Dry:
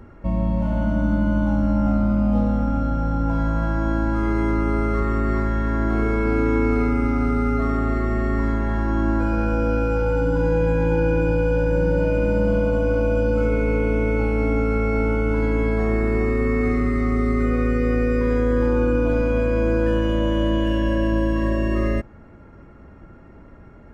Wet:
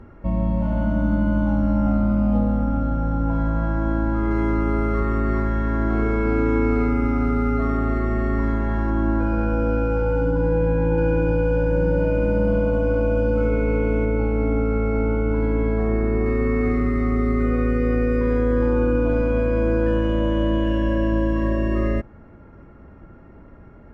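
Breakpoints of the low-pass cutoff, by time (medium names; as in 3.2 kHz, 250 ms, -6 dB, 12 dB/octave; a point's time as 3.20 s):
low-pass 6 dB/octave
2.9 kHz
from 2.37 s 1.7 kHz
from 4.31 s 3.1 kHz
from 8.90 s 1.9 kHz
from 10.31 s 1.3 kHz
from 10.98 s 2.2 kHz
from 14.05 s 1.2 kHz
from 16.26 s 2.4 kHz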